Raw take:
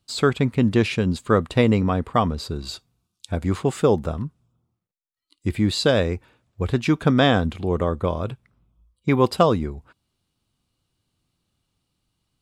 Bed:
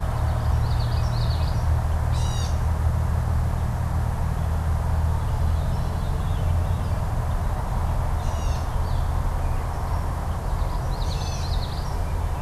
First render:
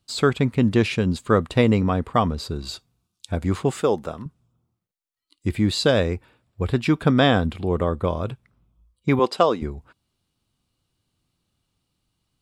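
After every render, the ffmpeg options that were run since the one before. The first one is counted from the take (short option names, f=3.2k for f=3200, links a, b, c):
-filter_complex "[0:a]asettb=1/sr,asplit=3[a][b][c];[a]atrim=end=3.814[d];[b]atrim=start=3.81:end=4.26,asetpts=PTS-STARTPTS,afade=t=in:d=0.004:c=qsin,afade=t=out:st=0.446:d=0.004:c=qsin,highpass=f=380:p=1[e];[c]atrim=start=4.256[f];[d][e]acrossfade=d=0.004:c1=hsin:c2=qsin[g];[g][f]acrossfade=d=0.004:c1=qsin:c2=hsin,asettb=1/sr,asplit=3[h][i][j];[h]atrim=end=6.134[k];[i]atrim=start=6.13:end=8.03,asetpts=PTS-STARTPTS,afade=t=in:d=0.004:c=qsin,afade=t=out:st=1.896:d=0.004:c=qsin,bandreject=f=6.3k:w=5.7[l];[j]atrim=start=8.026[m];[k][l]acrossfade=d=0.004:c1=hsin:c2=qsin[n];[n][m]acrossfade=d=0.004:c1=qsin:c2=hsin,asettb=1/sr,asplit=3[o][p][q];[o]atrim=end=9.194[r];[p]atrim=start=9.19:end=9.62,asetpts=PTS-STARTPTS,afade=t=in:d=0.004:c=qsin,afade=t=out:st=0.426:d=0.004:c=qsin,highpass=310,lowpass=7.9k[s];[q]atrim=start=9.616[t];[r][s]acrossfade=d=0.004:c1=hsin:c2=qsin[u];[u][t]acrossfade=d=0.004:c1=qsin:c2=hsin"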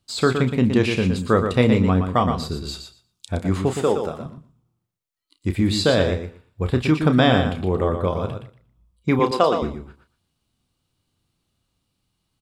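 -filter_complex "[0:a]asplit=2[a][b];[b]adelay=32,volume=-9.5dB[c];[a][c]amix=inputs=2:normalize=0,asplit=2[d][e];[e]aecho=0:1:118|236|354:0.447|0.0715|0.0114[f];[d][f]amix=inputs=2:normalize=0"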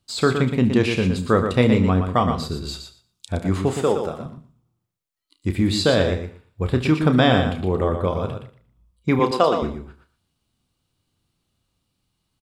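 -af "aecho=1:1:73:0.141"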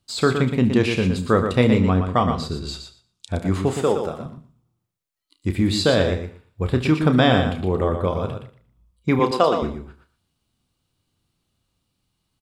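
-filter_complex "[0:a]asettb=1/sr,asplit=3[a][b][c];[a]atrim=end=1.804[d];[b]atrim=start=1.8:end=3.33,asetpts=PTS-STARTPTS,afade=t=in:d=0.004:c=qsin,afade=t=out:st=1.526:d=0.004:c=qsin,lowpass=9.2k[e];[c]atrim=start=3.326[f];[d][e]acrossfade=d=0.004:c1=hsin:c2=qsin[g];[g][f]acrossfade=d=0.004:c1=qsin:c2=hsin"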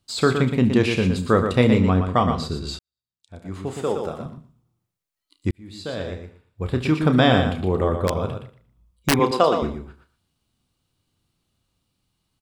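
-filter_complex "[0:a]asplit=3[a][b][c];[a]afade=t=out:st=8.07:d=0.02[d];[b]aeval=exprs='(mod(3.35*val(0)+1,2)-1)/3.35':c=same,afade=t=in:st=8.07:d=0.02,afade=t=out:st=9.14:d=0.02[e];[c]afade=t=in:st=9.14:d=0.02[f];[d][e][f]amix=inputs=3:normalize=0,asplit=3[g][h][i];[g]atrim=end=2.79,asetpts=PTS-STARTPTS,afade=t=out:st=2.786:d=0.004:c=hsin[j];[h]atrim=start=2.79:end=5.51,asetpts=PTS-STARTPTS,afade=t=in:d=1.41:c=qua,afade=t=out:st=2.716:d=0.004:c=hsin[k];[i]atrim=start=5.51,asetpts=PTS-STARTPTS,afade=t=in:d=1.73[l];[j][k][l]concat=n=3:v=0:a=1"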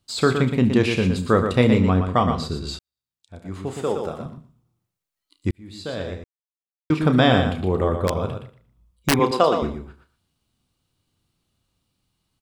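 -filter_complex "[0:a]asplit=3[a][b][c];[a]atrim=end=6.24,asetpts=PTS-STARTPTS,afade=t=out:st=6.236:d=0.004:c=hsin[d];[b]atrim=start=6.24:end=6.9,asetpts=PTS-STARTPTS,volume=0[e];[c]atrim=start=6.9,asetpts=PTS-STARTPTS,afade=t=in:d=0.004:c=hsin[f];[d][e][f]concat=n=3:v=0:a=1"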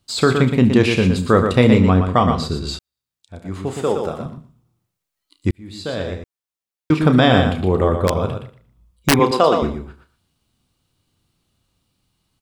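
-af "volume=4.5dB,alimiter=limit=-2dB:level=0:latency=1"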